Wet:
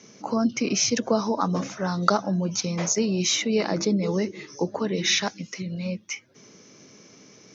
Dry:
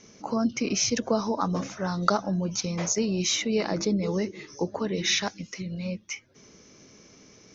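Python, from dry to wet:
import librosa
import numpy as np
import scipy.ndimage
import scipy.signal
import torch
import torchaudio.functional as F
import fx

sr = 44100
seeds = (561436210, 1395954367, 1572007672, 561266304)

y = scipy.signal.sosfilt(scipy.signal.butter(4, 110.0, 'highpass', fs=sr, output='sos'), x)
y = F.gain(torch.from_numpy(y), 2.5).numpy()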